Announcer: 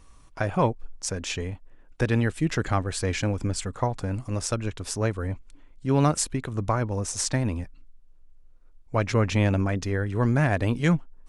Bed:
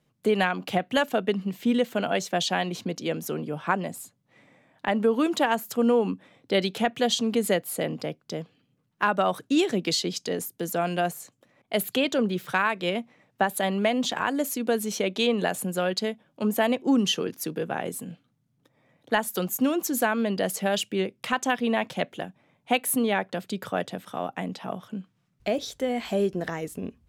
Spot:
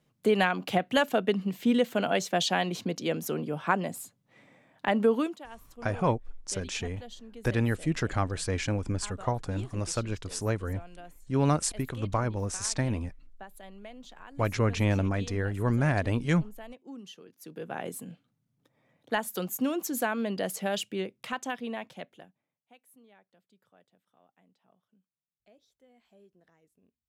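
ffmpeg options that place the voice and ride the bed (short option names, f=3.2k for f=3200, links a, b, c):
-filter_complex "[0:a]adelay=5450,volume=-3.5dB[a];[1:a]volume=16.5dB,afade=t=out:st=5.12:d=0.25:silence=0.0841395,afade=t=in:st=17.36:d=0.47:silence=0.133352,afade=t=out:st=20.74:d=1.89:silence=0.0334965[b];[a][b]amix=inputs=2:normalize=0"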